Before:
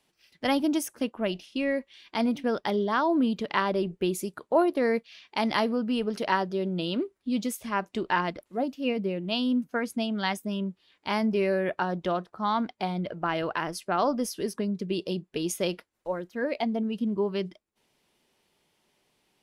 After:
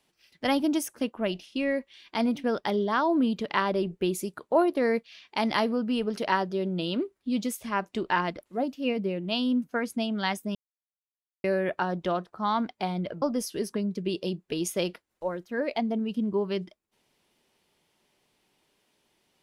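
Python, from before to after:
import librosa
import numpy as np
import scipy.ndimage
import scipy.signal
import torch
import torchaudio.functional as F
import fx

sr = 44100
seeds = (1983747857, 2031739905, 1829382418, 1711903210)

y = fx.edit(x, sr, fx.silence(start_s=10.55, length_s=0.89),
    fx.cut(start_s=13.22, length_s=0.84), tone=tone)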